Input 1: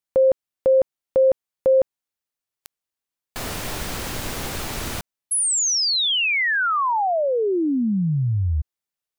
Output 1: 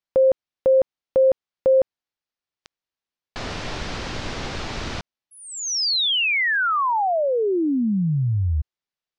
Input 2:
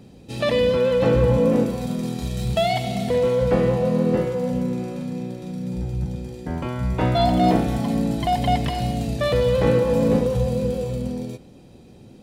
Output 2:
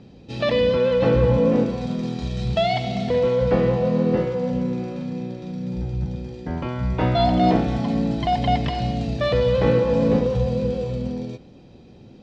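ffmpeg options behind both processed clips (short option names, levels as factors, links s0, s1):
-af "lowpass=f=5600:w=0.5412,lowpass=f=5600:w=1.3066"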